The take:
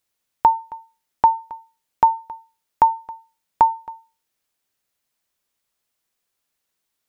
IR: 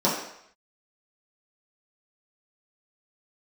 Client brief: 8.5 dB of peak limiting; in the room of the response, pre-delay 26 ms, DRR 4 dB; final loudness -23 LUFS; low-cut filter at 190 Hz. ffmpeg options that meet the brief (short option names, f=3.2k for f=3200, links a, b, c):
-filter_complex "[0:a]highpass=190,alimiter=limit=-11.5dB:level=0:latency=1,asplit=2[a][b];[1:a]atrim=start_sample=2205,adelay=26[c];[b][c]afir=irnorm=-1:irlink=0,volume=-19.5dB[d];[a][d]amix=inputs=2:normalize=0,volume=2.5dB"